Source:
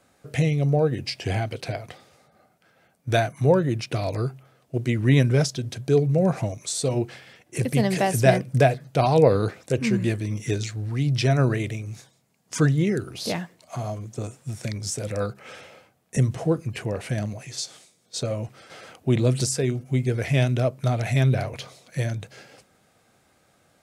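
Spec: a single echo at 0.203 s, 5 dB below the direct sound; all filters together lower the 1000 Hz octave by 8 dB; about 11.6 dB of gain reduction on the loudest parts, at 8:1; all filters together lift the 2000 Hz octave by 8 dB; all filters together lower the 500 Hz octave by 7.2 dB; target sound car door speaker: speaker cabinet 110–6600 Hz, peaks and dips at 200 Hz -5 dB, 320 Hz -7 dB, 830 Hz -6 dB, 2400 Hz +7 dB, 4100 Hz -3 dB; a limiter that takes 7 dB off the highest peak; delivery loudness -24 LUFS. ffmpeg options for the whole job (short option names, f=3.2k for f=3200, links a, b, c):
-af "equalizer=f=500:t=o:g=-5.5,equalizer=f=1k:t=o:g=-7,equalizer=f=2k:t=o:g=8,acompressor=threshold=-25dB:ratio=8,alimiter=limit=-21dB:level=0:latency=1,highpass=110,equalizer=f=200:t=q:w=4:g=-5,equalizer=f=320:t=q:w=4:g=-7,equalizer=f=830:t=q:w=4:g=-6,equalizer=f=2.4k:t=q:w=4:g=7,equalizer=f=4.1k:t=q:w=4:g=-3,lowpass=f=6.6k:w=0.5412,lowpass=f=6.6k:w=1.3066,aecho=1:1:203:0.562,volume=8dB"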